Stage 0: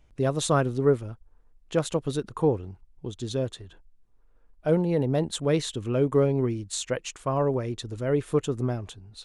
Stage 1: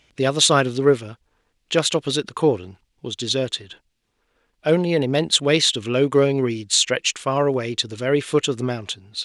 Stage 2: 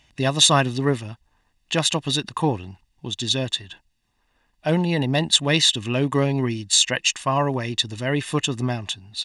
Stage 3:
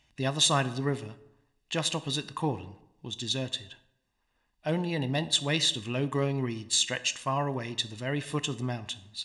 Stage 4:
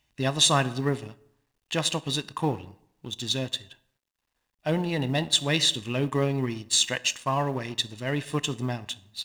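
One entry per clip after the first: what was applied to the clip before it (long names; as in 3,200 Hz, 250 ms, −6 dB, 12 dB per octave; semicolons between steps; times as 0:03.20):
meter weighting curve D; level +6 dB
comb filter 1.1 ms, depth 63%; level −1 dB
dense smooth reverb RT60 0.84 s, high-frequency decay 0.6×, DRR 12.5 dB; level −8.5 dB
mu-law and A-law mismatch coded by A; level +4 dB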